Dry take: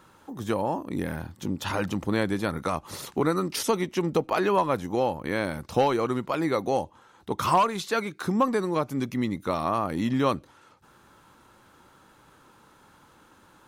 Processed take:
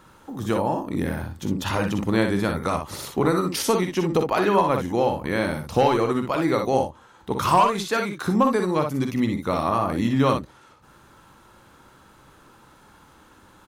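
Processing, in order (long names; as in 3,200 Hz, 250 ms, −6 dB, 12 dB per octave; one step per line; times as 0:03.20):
low-shelf EQ 72 Hz +7.5 dB
on a send: ambience of single reflections 45 ms −11 dB, 60 ms −6 dB
on the sum: level +2.5 dB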